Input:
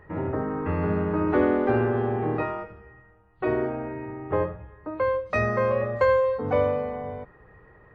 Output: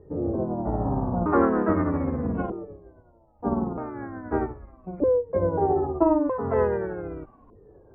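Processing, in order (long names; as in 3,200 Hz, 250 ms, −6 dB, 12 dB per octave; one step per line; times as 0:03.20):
pitch shifter swept by a sawtooth −10.5 semitones, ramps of 1,259 ms
auto-filter low-pass saw up 0.4 Hz 410–3,000 Hz
level that may rise only so fast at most 560 dB per second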